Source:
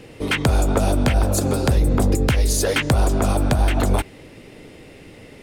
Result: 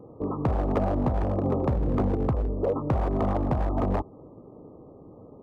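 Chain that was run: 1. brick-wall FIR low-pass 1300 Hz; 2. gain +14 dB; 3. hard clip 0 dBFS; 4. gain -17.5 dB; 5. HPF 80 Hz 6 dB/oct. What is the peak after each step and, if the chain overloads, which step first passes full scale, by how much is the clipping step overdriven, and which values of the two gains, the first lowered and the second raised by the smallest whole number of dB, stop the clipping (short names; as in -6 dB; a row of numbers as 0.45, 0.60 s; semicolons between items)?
-7.5, +6.5, 0.0, -17.5, -14.5 dBFS; step 2, 6.5 dB; step 2 +7 dB, step 4 -10.5 dB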